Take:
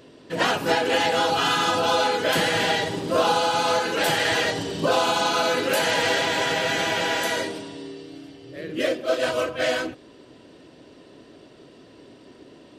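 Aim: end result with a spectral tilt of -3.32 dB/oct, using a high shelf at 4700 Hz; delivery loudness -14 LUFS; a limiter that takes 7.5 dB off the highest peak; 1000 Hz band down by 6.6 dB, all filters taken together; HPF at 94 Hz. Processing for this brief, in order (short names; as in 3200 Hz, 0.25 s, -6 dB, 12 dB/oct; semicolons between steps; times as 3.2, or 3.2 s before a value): HPF 94 Hz; bell 1000 Hz -8.5 dB; high shelf 4700 Hz -5.5 dB; gain +14 dB; limiter -5 dBFS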